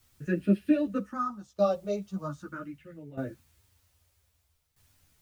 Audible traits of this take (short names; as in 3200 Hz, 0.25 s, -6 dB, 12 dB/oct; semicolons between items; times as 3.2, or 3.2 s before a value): phasing stages 4, 0.41 Hz, lowest notch 260–1100 Hz; a quantiser's noise floor 12-bit, dither triangular; tremolo saw down 0.63 Hz, depth 80%; a shimmering, thickened sound